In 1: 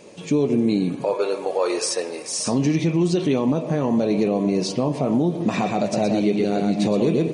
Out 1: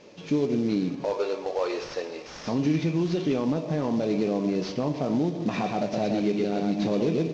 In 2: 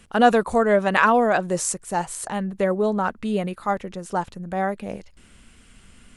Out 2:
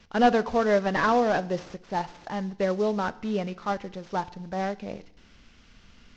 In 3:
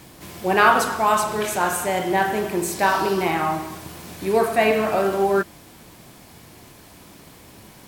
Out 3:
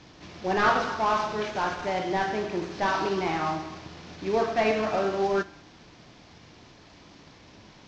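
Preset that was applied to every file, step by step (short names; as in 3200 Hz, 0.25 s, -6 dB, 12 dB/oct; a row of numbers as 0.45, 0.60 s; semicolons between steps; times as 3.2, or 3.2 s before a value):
CVSD 32 kbps; FDN reverb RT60 0.74 s, low-frequency decay 1.25×, high-frequency decay 1×, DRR 15.5 dB; match loudness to -27 LUFS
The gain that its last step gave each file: -5.0, -4.0, -5.0 dB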